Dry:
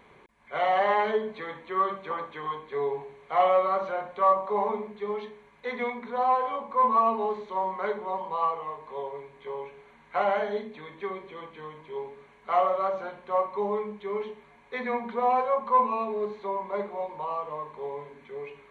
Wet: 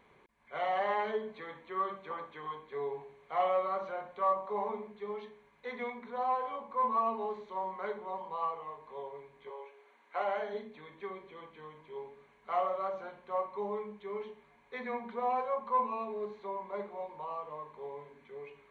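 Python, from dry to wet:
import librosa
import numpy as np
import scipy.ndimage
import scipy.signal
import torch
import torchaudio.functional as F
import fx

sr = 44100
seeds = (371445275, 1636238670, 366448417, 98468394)

y = fx.highpass(x, sr, hz=fx.line((9.49, 450.0), (10.53, 200.0)), slope=24, at=(9.49, 10.53), fade=0.02)
y = y * librosa.db_to_amplitude(-8.0)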